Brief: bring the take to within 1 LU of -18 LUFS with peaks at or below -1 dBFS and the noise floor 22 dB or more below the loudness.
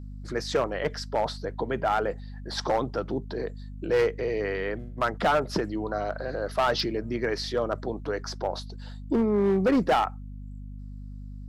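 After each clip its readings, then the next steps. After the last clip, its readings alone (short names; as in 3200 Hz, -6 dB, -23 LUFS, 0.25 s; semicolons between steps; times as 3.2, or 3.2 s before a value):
clipped 1.3%; flat tops at -17.5 dBFS; hum 50 Hz; harmonics up to 250 Hz; hum level -37 dBFS; loudness -28.0 LUFS; peak -17.5 dBFS; loudness target -18.0 LUFS
-> clip repair -17.5 dBFS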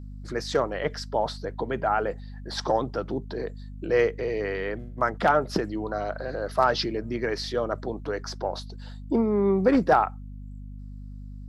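clipped 0.0%; hum 50 Hz; harmonics up to 250 Hz; hum level -37 dBFS
-> notches 50/100/150/200/250 Hz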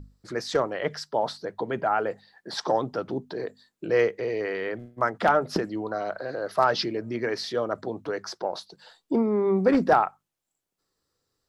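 hum none; loudness -27.0 LUFS; peak -8.0 dBFS; loudness target -18.0 LUFS
-> gain +9 dB; limiter -1 dBFS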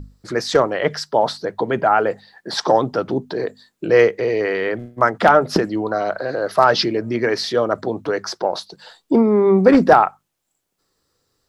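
loudness -18.0 LUFS; peak -1.0 dBFS; noise floor -74 dBFS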